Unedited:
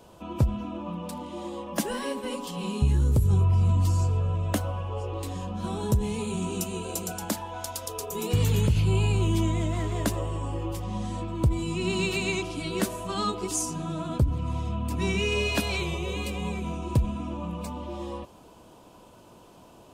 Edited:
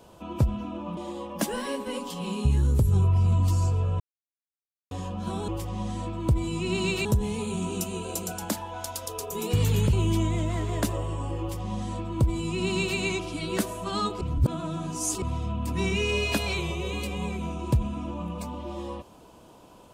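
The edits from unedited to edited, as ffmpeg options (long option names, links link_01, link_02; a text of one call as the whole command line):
ffmpeg -i in.wav -filter_complex "[0:a]asplit=9[link_01][link_02][link_03][link_04][link_05][link_06][link_07][link_08][link_09];[link_01]atrim=end=0.972[link_10];[link_02]atrim=start=1.338:end=4.37,asetpts=PTS-STARTPTS,afade=type=out:start_time=3.028:duration=0.004:curve=hsin[link_11];[link_03]atrim=start=4.37:end=5.28,asetpts=PTS-STARTPTS,volume=0[link_12];[link_04]atrim=start=5.28:end=5.852,asetpts=PTS-STARTPTS,afade=type=in:duration=0.004:curve=hsin[link_13];[link_05]atrim=start=10.628:end=12.202[link_14];[link_06]atrim=start=5.848:end=8.732[link_15];[link_07]atrim=start=9.158:end=13.442[link_16];[link_08]atrim=start=13.438:end=14.452,asetpts=PTS-STARTPTS,areverse[link_17];[link_09]atrim=start=14.448[link_18];[link_11][link_12][link_13]concat=n=3:v=0:a=1[link_19];[link_10][link_19]acrossfade=duration=0.004:curve1=hsin:curve2=hsin[link_20];[link_20][link_14]acrossfade=duration=0.004:curve1=hsin:curve2=hsin[link_21];[link_21][link_15]acrossfade=duration=0.004:curve1=hsin:curve2=hsin[link_22];[link_22][link_16]acrossfade=duration=0.004:curve1=hsin:curve2=hsin[link_23];[link_23][link_17]acrossfade=duration=0.004:curve1=hsin:curve2=hsin[link_24];[link_24][link_18]acrossfade=duration=0.004:curve1=hsin:curve2=hsin" out.wav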